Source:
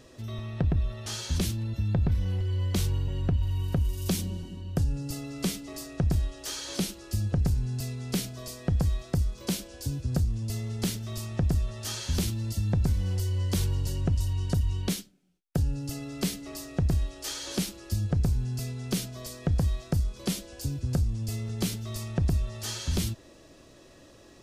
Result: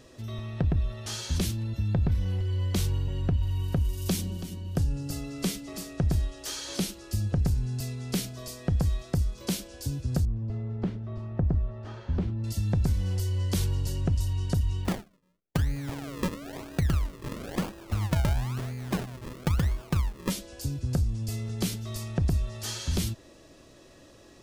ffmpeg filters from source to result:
ffmpeg -i in.wav -filter_complex "[0:a]asettb=1/sr,asplit=3[link_01][link_02][link_03];[link_01]atrim=end=3.994[link_04];[link_02]atrim=start=3.99:end=6.25,asetpts=PTS-STARTPTS,afade=type=in:duration=0.004:curve=qsin,afade=type=out:start_time=2.256:duration=0.004:curve=qsin,aecho=1:1:329|658|987:0.2|0.0579|0.0168,atrim=end_sample=99666[link_05];[link_03]atrim=start=6.246[link_06];[link_04][link_05]acrossfade=duration=0.004:curve1=hsin:curve2=qsin[link_07];[link_07][link_06]acrossfade=duration=0.004:curve1=qsin:curve2=hsin,asettb=1/sr,asplit=3[link_08][link_09][link_10];[link_08]atrim=end=10.254[link_11];[link_09]atrim=start=10.25:end=12.44,asetpts=PTS-STARTPTS,afade=type=in:duration=0.004:curve=qsin,afade=type=out:start_time=2.186:duration=0.004:curve=qsin,lowpass=1200[link_12];[link_10]atrim=start=12.436[link_13];[link_11][link_12]acrossfade=duration=0.004:curve1=hsin:curve2=qsin[link_14];[link_14][link_13]acrossfade=duration=0.004:curve1=qsin:curve2=hsin,asplit=3[link_15][link_16][link_17];[link_15]afade=type=out:start_time=14.84:duration=0.02[link_18];[link_16]acrusher=samples=40:mix=1:aa=0.000001:lfo=1:lforange=40:lforate=1,afade=type=in:start_time=14.84:duration=0.02,afade=type=out:start_time=20.29:duration=0.02[link_19];[link_17]afade=type=in:start_time=20.29:duration=0.02[link_20];[link_18][link_19][link_20]amix=inputs=3:normalize=0" out.wav

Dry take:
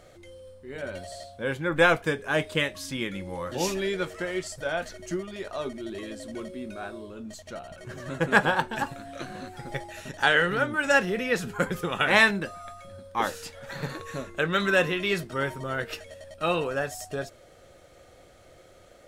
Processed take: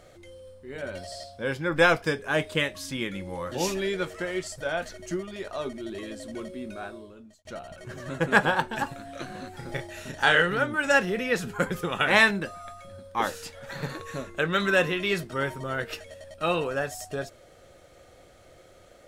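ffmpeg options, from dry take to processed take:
ffmpeg -i in.wav -filter_complex "[0:a]asettb=1/sr,asplit=3[link_01][link_02][link_03];[link_01]atrim=end=0.974[link_04];[link_02]atrim=start=0.97:end=2.19,asetpts=PTS-STARTPTS,afade=type=in:duration=0.004:curve=qsin,afade=type=out:start_time=1.216:duration=0.004:curve=qsin,equalizer=frequency=5100:width_type=o:width=0.21:gain=13[link_05];[link_03]atrim=start=2.186[link_06];[link_04][link_05]acrossfade=duration=0.004:curve1=hsin:curve2=qsin[link_07];[link_07][link_06]acrossfade=duration=0.004:curve1=qsin:curve2=hsin,asettb=1/sr,asplit=3[link_08][link_09][link_10];[link_08]atrim=end=9.504[link_11];[link_09]atrim=start=9.5:end=10.42,asetpts=PTS-STARTPTS,afade=type=in:duration=0.004:curve=qsin,afade=type=out:start_time=0.916:duration=0.004:curve=qsin,asplit=2[link_12][link_13];[link_13]adelay=32,volume=-5dB[link_14];[link_12][link_14]amix=inputs=2:normalize=0,atrim=end_sample=40572[link_15];[link_10]atrim=start=10.416[link_16];[link_11][link_15]acrossfade=duration=0.004:curve1=hsin:curve2=qsin[link_17];[link_17][link_16]acrossfade=duration=0.004:curve1=qsin:curve2=hsin,asplit=2[link_18][link_19];[link_18]atrim=end=7.45,asetpts=PTS-STARTPTS,afade=type=out:start_time=6.79:duration=0.66[link_20];[link_19]atrim=start=7.45,asetpts=PTS-STARTPTS,afade=type=in:duration=0.004:curve=hsin[link_21];[link_20][link_21]concat=n=2:v=0:a=1" out.wav

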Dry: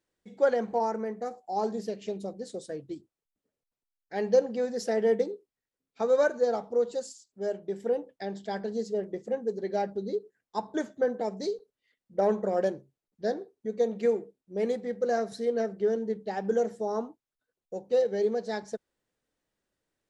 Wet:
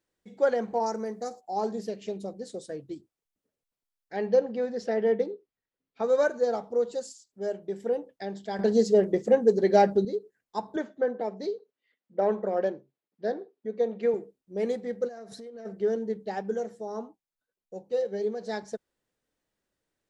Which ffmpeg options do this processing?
ffmpeg -i in.wav -filter_complex "[0:a]asettb=1/sr,asplit=3[link_01][link_02][link_03];[link_01]atrim=end=0.864[link_04];[link_02]atrim=start=0.86:end=1.41,asetpts=PTS-STARTPTS,afade=type=in:duration=0.004:curve=qsin,afade=type=out:start_time=0.546:duration=0.004:curve=qsin,highshelf=frequency=3500:width_type=q:width=1.5:gain=8.5[link_05];[link_03]atrim=start=1.406[link_06];[link_04][link_05]acrossfade=duration=0.004:curve1=hsin:curve2=qsin[link_07];[link_07][link_06]acrossfade=duration=0.004:curve1=qsin:curve2=hsin,asettb=1/sr,asplit=3[link_08][link_09][link_10];[link_08]atrim=end=4.164[link_11];[link_09]atrim=start=4.16:end=6.04,asetpts=PTS-STARTPTS,afade=type=in:duration=0.004:curve=qsin,afade=type=out:start_time=1.876:duration=0.004:curve=qsin,lowpass=3900[link_12];[link_10]atrim=start=6.036[link_13];[link_11][link_12]acrossfade=duration=0.004:curve1=hsin:curve2=qsin[link_14];[link_14][link_13]acrossfade=duration=0.004:curve1=qsin:curve2=hsin,asettb=1/sr,asplit=3[link_15][link_16][link_17];[link_15]atrim=end=10.764[link_18];[link_16]atrim=start=10.76:end=14.14,asetpts=PTS-STARTPTS,afade=type=in:duration=0.004:curve=qsin,afade=type=out:start_time=3.376:duration=0.004:curve=qsin,highpass=200,lowpass=3600[link_19];[link_17]atrim=start=14.136[link_20];[link_18][link_19]acrossfade=duration=0.004:curve1=hsin:curve2=qsin[link_21];[link_21][link_20]acrossfade=duration=0.004:curve1=qsin:curve2=hsin,asplit=3[link_22][link_23][link_24];[link_22]afade=type=out:start_time=15.07:duration=0.02[link_25];[link_23]acompressor=threshold=-40dB:ratio=10:attack=3.2:release=140:knee=1:detection=peak,afade=type=in:start_time=15.07:duration=0.02,afade=type=out:start_time=15.65:duration=0.02[link_26];[link_24]afade=type=in:start_time=15.65:duration=0.02[link_27];[link_25][link_26][link_27]amix=inputs=3:normalize=0,asplit=3[link_28][link_29][link_30];[link_28]afade=type=out:start_time=16.41:duration=0.02[link_31];[link_29]flanger=delay=4.6:depth=1.6:regen=75:speed=1.7:shape=sinusoidal,afade=type=in:start_time=16.41:duration=0.02,afade=type=out:start_time=18.4:duration=0.02[link_32];[link_30]afade=type=in:start_time=18.4:duration=0.02[link_33];[link_31][link_32][link_33]amix=inputs=3:normalize=0,asplit=3[link_34][link_35][link_36];[link_34]atrim=end=8.592[link_37];[link_35]atrim=start=8.588:end=10.052,asetpts=PTS-STARTPTS,volume=10dB[link_38];[link_36]atrim=start=10.048[link_39];[link_37][link_38]acrossfade=duration=0.004:curve1=hsin:curve2=hsin[link_40];[link_40][link_39]acrossfade=duration=0.004:curve1=hsin:curve2=hsin" out.wav

